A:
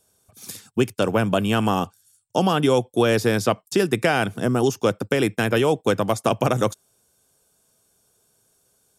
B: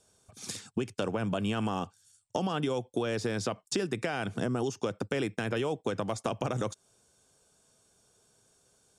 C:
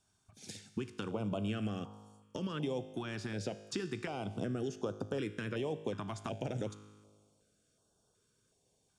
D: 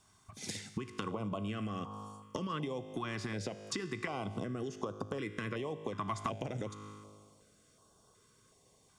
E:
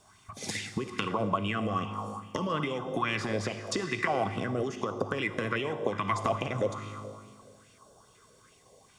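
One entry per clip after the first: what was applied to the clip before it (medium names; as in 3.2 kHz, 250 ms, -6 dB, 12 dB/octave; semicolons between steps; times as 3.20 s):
low-pass 8.8 kHz 24 dB/octave; peak limiter -11.5 dBFS, peak gain reduction 5.5 dB; compression, threshold -28 dBFS, peak gain reduction 11.5 dB
treble shelf 6.2 kHz -9.5 dB; feedback comb 52 Hz, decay 1.5 s, harmonics all, mix 60%; step-sequenced notch 2.7 Hz 500–2100 Hz; trim +2 dB
compression, threshold -44 dBFS, peak gain reduction 12 dB; small resonant body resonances 1.1/2 kHz, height 15 dB, ringing for 40 ms; trim +8 dB
on a send at -10 dB: reverberation RT60 2.0 s, pre-delay 41 ms; on the sum: sweeping bell 2.4 Hz 510–2800 Hz +12 dB; trim +4.5 dB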